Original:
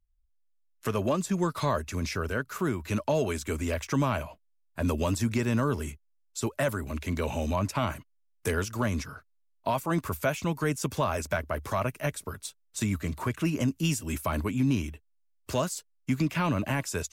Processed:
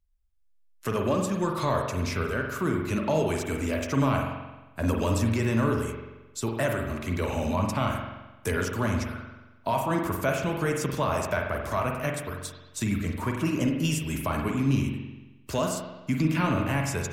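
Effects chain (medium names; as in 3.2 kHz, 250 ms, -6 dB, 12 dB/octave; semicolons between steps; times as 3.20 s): spring tank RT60 1.1 s, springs 44 ms, chirp 65 ms, DRR 1.5 dB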